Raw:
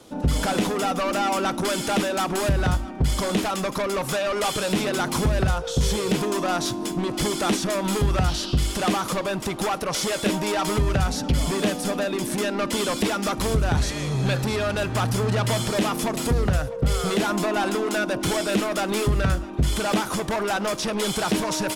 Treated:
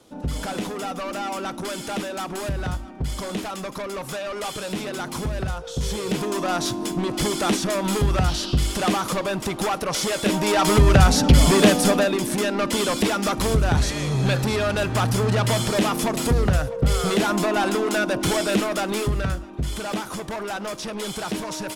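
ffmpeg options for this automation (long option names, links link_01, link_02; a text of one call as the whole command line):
ffmpeg -i in.wav -af "volume=8.5dB,afade=type=in:start_time=5.7:duration=0.98:silence=0.473151,afade=type=in:start_time=10.25:duration=0.77:silence=0.421697,afade=type=out:start_time=11.82:duration=0.4:silence=0.473151,afade=type=out:start_time=18.46:duration=1:silence=0.446684" out.wav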